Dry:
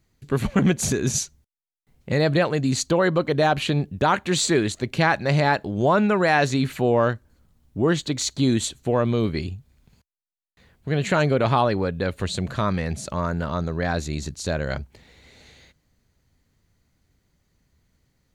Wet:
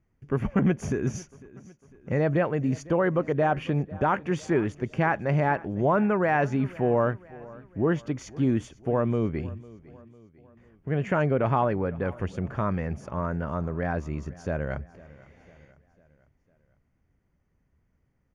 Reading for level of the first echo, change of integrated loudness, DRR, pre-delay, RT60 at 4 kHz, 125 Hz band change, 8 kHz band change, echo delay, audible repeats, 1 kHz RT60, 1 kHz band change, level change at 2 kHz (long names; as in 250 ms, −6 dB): −21.0 dB, −4.5 dB, no reverb audible, no reverb audible, no reverb audible, −3.5 dB, below −15 dB, 501 ms, 3, no reverb audible, −4.0 dB, −6.5 dB